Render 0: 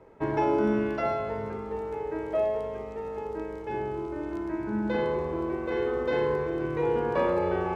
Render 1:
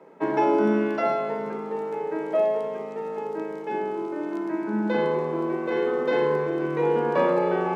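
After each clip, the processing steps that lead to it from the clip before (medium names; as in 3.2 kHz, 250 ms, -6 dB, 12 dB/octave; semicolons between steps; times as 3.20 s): Chebyshev high-pass 150 Hz, order 8; trim +4.5 dB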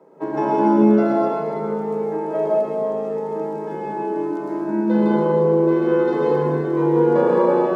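peaking EQ 2.4 kHz -11 dB 1.4 oct; reverberation RT60 1.8 s, pre-delay 106 ms, DRR -4 dB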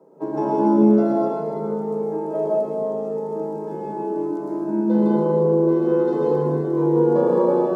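peaking EQ 2.2 kHz -14 dB 1.6 oct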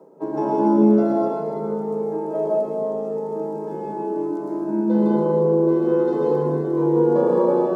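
high-pass 120 Hz; reverse; upward compressor, threshold -26 dBFS; reverse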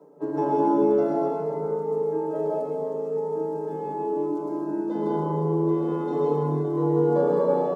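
comb 6.9 ms, depth 96%; trim -5.5 dB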